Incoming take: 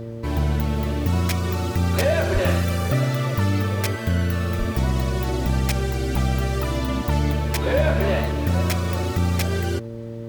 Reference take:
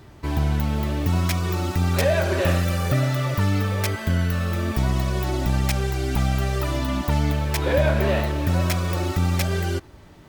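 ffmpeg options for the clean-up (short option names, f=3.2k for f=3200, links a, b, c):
-filter_complex "[0:a]bandreject=f=114.9:t=h:w=4,bandreject=f=229.8:t=h:w=4,bandreject=f=344.7:t=h:w=4,bandreject=f=459.6:t=h:w=4,bandreject=f=574.5:t=h:w=4,asplit=3[a][b][c];[a]afade=t=out:st=2.33:d=0.02[d];[b]highpass=f=140:w=0.5412,highpass=f=140:w=1.3066,afade=t=in:st=2.33:d=0.02,afade=t=out:st=2.45:d=0.02[e];[c]afade=t=in:st=2.45:d=0.02[f];[d][e][f]amix=inputs=3:normalize=0,asplit=3[g][h][i];[g]afade=t=out:st=4.58:d=0.02[j];[h]highpass=f=140:w=0.5412,highpass=f=140:w=1.3066,afade=t=in:st=4.58:d=0.02,afade=t=out:st=4.7:d=0.02[k];[i]afade=t=in:st=4.7:d=0.02[l];[j][k][l]amix=inputs=3:normalize=0"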